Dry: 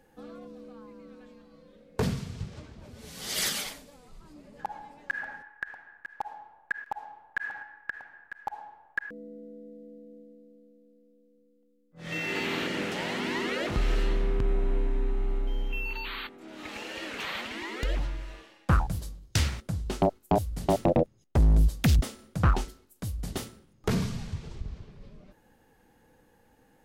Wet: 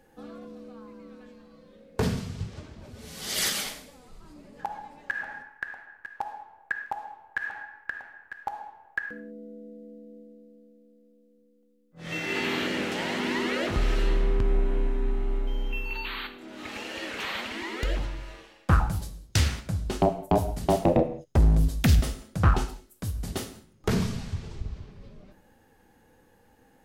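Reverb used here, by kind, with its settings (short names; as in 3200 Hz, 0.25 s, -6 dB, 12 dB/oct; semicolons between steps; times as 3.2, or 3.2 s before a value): non-linear reverb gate 0.23 s falling, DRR 8 dB; gain +1.5 dB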